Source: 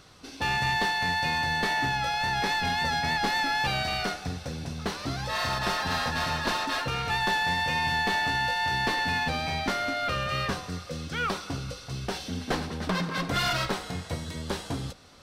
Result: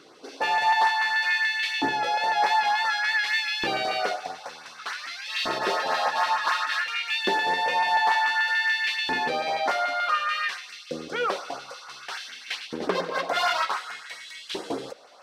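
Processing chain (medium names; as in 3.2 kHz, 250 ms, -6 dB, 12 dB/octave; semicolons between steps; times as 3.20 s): LFO notch saw up 6.9 Hz 570–4200 Hz; treble shelf 6.8 kHz -11.5 dB; LFO high-pass saw up 0.55 Hz 320–3000 Hz; trim +3.5 dB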